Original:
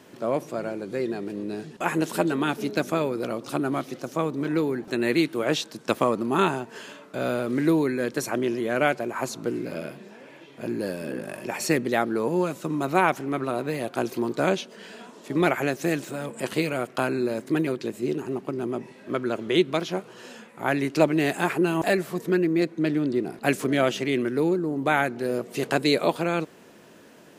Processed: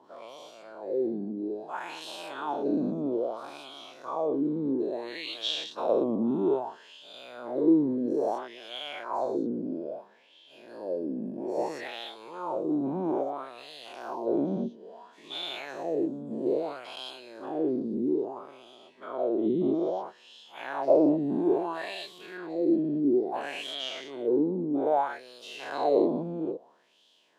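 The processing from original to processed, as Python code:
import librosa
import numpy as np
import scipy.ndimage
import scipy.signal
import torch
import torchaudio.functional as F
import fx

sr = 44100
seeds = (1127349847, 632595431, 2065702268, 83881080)

y = fx.spec_dilate(x, sr, span_ms=240)
y = fx.band_shelf(y, sr, hz=1800.0, db=-13.5, octaves=1.3)
y = fx.wah_lfo(y, sr, hz=0.6, low_hz=220.0, high_hz=3300.0, q=3.9)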